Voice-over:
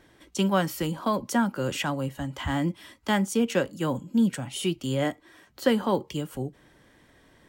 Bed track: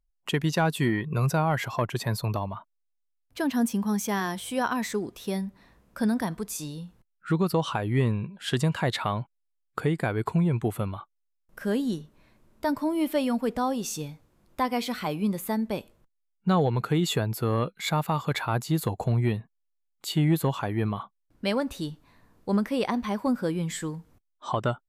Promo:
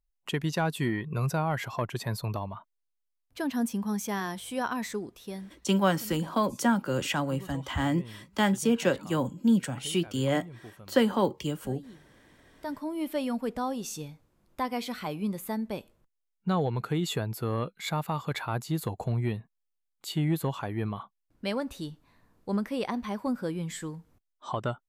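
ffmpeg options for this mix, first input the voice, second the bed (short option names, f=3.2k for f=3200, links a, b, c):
-filter_complex "[0:a]adelay=5300,volume=-0.5dB[a];[1:a]volume=12dB,afade=t=out:st=4.88:d=0.87:silence=0.149624,afade=t=in:st=12.13:d=1.12:silence=0.158489[b];[a][b]amix=inputs=2:normalize=0"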